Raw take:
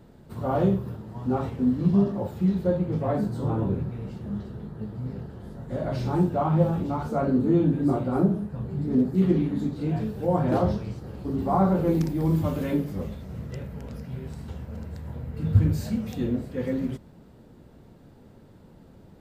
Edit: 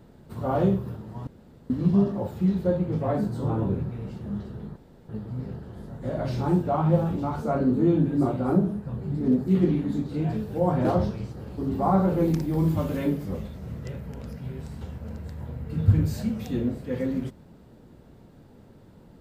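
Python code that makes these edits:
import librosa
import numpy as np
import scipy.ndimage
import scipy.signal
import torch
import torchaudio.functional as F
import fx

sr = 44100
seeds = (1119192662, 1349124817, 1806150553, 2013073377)

y = fx.edit(x, sr, fx.room_tone_fill(start_s=1.27, length_s=0.43),
    fx.insert_room_tone(at_s=4.76, length_s=0.33), tone=tone)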